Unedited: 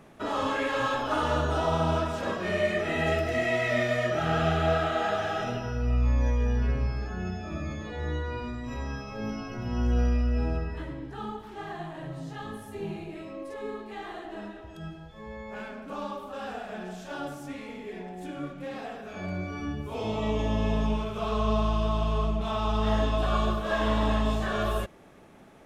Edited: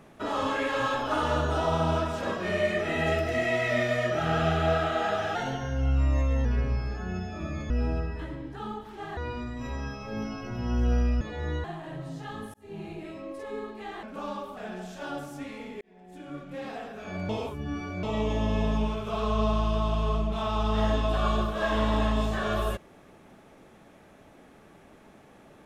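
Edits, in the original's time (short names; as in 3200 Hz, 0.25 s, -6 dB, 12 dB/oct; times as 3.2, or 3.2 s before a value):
5.35–6.56 speed 110%
7.81–8.24 swap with 10.28–11.75
12.65–13.04 fade in
14.14–15.77 cut
16.31–16.66 cut
17.9–18.71 fade in
19.38–20.12 reverse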